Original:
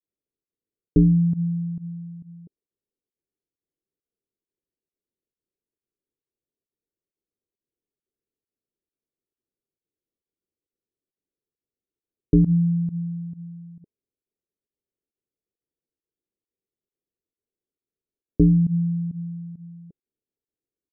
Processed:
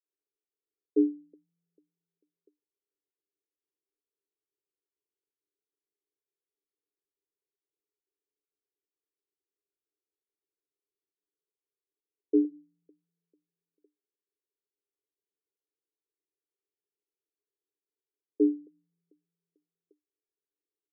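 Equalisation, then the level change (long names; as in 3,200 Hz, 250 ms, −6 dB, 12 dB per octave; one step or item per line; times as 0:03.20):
Chebyshev high-pass with heavy ripple 290 Hz, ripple 9 dB
elliptic low-pass filter 530 Hz
+2.0 dB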